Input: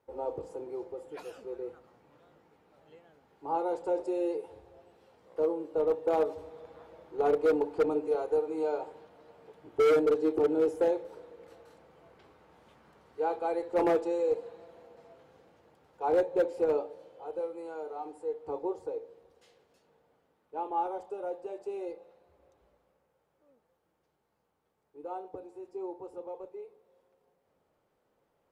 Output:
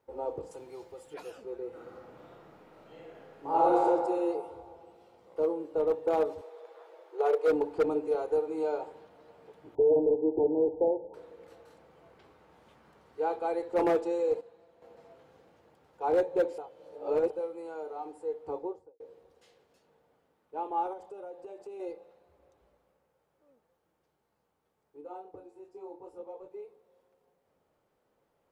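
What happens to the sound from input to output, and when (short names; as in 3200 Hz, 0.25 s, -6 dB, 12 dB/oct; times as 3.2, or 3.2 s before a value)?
0.51–1.14 EQ curve 140 Hz 0 dB, 360 Hz -8 dB, 4200 Hz +9 dB
1.68–3.81 reverb throw, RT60 2 s, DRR -7.5 dB
4.33–5.44 notch 1700 Hz, Q 7.2
6.41–7.48 steep high-pass 350 Hz 72 dB/oct
9.75–11.14 brick-wall FIR low-pass 1000 Hz
14.41–14.82 gain -9 dB
16.58–17.3 reverse
18.49–19 studio fade out
20.93–21.8 compressor 3:1, threshold -42 dBFS
25–26.49 detuned doubles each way 13 cents -> 24 cents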